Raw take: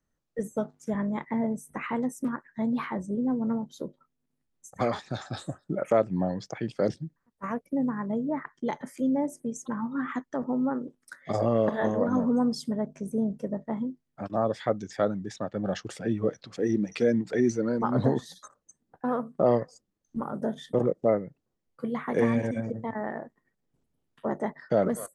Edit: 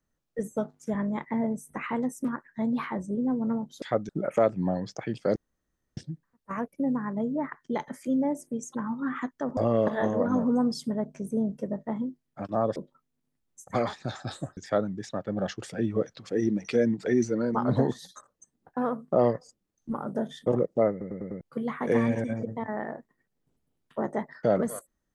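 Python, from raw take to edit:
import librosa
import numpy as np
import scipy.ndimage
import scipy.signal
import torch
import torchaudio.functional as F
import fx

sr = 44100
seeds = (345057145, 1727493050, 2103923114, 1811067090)

y = fx.edit(x, sr, fx.swap(start_s=3.82, length_s=1.81, other_s=14.57, other_length_s=0.27),
    fx.insert_room_tone(at_s=6.9, length_s=0.61),
    fx.cut(start_s=10.5, length_s=0.88),
    fx.stutter_over(start_s=21.18, slice_s=0.1, count=5), tone=tone)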